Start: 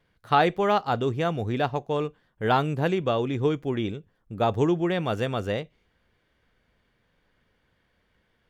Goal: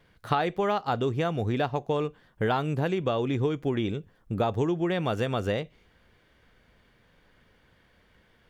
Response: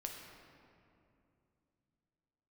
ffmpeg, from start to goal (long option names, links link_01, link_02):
-af "acompressor=threshold=-31dB:ratio=5,volume=7dB"